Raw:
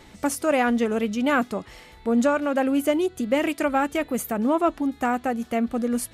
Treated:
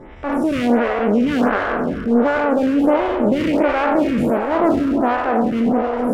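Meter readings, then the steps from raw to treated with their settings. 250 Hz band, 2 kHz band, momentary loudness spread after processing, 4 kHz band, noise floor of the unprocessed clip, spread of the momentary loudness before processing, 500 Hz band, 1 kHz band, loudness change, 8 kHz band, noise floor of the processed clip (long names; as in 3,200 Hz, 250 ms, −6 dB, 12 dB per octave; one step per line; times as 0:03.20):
+6.5 dB, +4.5 dB, 3 LU, +2.5 dB, −49 dBFS, 5 LU, +6.5 dB, +6.0 dB, +6.0 dB, below −10 dB, −26 dBFS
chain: peak hold with a decay on every bin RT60 1.86 s
low-shelf EQ 410 Hz +11 dB
in parallel at +0.5 dB: downward compressor, threshold −21 dBFS, peak gain reduction 12.5 dB
on the sum: transient designer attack −6 dB, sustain −2 dB
Savitzky-Golay smoothing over 25 samples
asymmetric clip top −19 dBFS
delay with a band-pass on its return 323 ms, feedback 77%, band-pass 680 Hz, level −9 dB
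phaser with staggered stages 1.4 Hz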